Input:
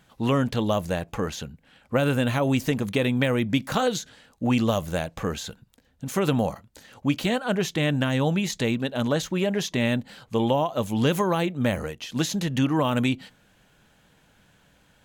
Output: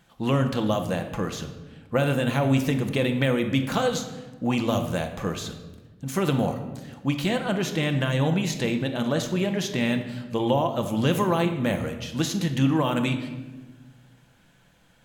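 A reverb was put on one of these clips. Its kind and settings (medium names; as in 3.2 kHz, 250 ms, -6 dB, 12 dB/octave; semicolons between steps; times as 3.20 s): simulated room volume 850 m³, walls mixed, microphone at 0.8 m; trim -1.5 dB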